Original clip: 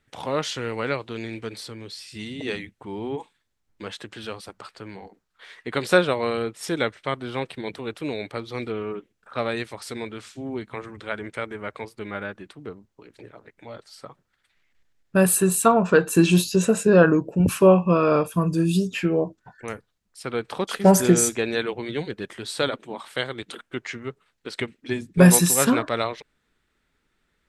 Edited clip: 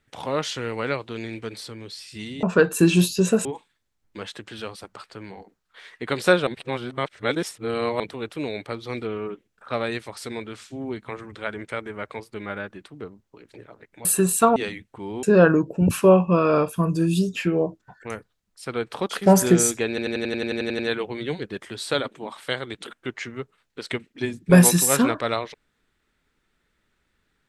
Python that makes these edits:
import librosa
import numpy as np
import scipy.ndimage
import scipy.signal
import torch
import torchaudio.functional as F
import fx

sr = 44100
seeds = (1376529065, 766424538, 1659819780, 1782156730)

y = fx.edit(x, sr, fx.swap(start_s=2.43, length_s=0.67, other_s=15.79, other_length_s=1.02),
    fx.reverse_span(start_s=6.12, length_s=1.53),
    fx.cut(start_s=13.7, length_s=1.58),
    fx.stutter(start_s=21.47, slice_s=0.09, count=11), tone=tone)